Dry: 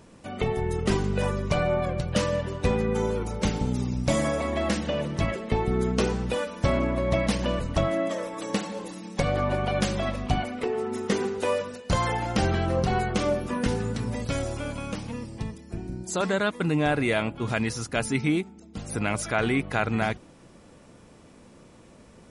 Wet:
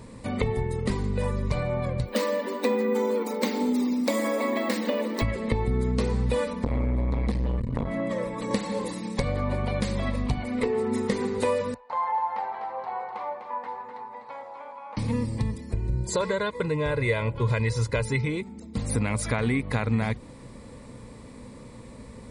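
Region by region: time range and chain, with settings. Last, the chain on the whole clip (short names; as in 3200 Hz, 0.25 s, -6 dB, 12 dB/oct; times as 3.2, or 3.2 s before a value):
2.06–5.22 brick-wall FIR high-pass 210 Hz + careless resampling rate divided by 2×, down filtered, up hold
6.53–8.51 tone controls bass +8 dB, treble -6 dB + flange 1.5 Hz, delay 4.2 ms, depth 1.3 ms, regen -50% + core saturation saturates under 620 Hz
11.74–14.97 ladder band-pass 920 Hz, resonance 75% + echo 0.25 s -6.5 dB
15.73–18.42 air absorption 52 m + comb 2 ms, depth 73%
whole clip: low shelf 180 Hz +7.5 dB; compressor, threshold -27 dBFS; ripple EQ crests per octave 0.97, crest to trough 8 dB; gain +3.5 dB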